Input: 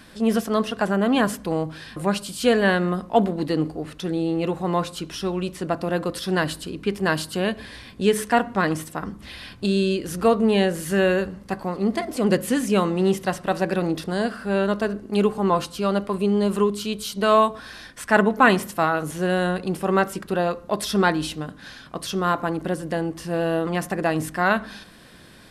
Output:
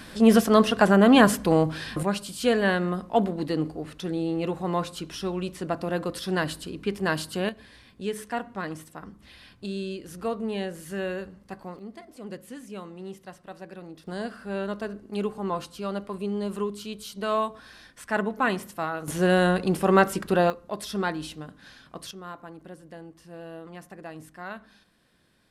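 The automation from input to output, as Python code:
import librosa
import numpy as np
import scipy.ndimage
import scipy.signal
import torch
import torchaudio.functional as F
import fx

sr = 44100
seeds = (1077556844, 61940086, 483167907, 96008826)

y = fx.gain(x, sr, db=fx.steps((0.0, 4.0), (2.03, -4.0), (7.49, -11.5), (11.79, -19.0), (14.07, -9.0), (19.08, 1.5), (20.5, -8.5), (22.11, -18.0)))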